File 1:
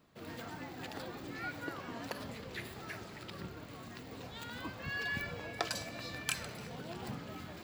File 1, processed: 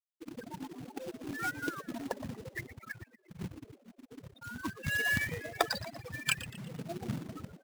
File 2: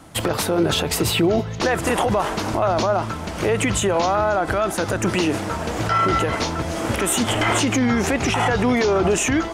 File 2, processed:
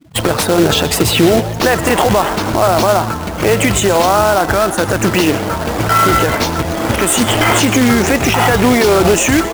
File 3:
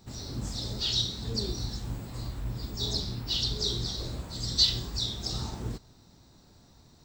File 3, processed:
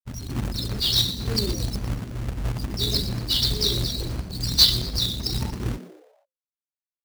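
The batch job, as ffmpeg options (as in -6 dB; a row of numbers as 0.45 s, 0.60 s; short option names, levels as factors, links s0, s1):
-filter_complex "[0:a]afftfilt=real='re*gte(hypot(re,im),0.0316)':imag='im*gte(hypot(re,im),0.0316)':win_size=1024:overlap=0.75,acrusher=bits=2:mode=log:mix=0:aa=0.000001,asplit=5[s0][s1][s2][s3][s4];[s1]adelay=118,afreqshift=130,volume=0.178[s5];[s2]adelay=236,afreqshift=260,volume=0.0785[s6];[s3]adelay=354,afreqshift=390,volume=0.0343[s7];[s4]adelay=472,afreqshift=520,volume=0.0151[s8];[s0][s5][s6][s7][s8]amix=inputs=5:normalize=0,volume=2.24"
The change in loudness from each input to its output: +5.0 LU, +8.0 LU, +7.0 LU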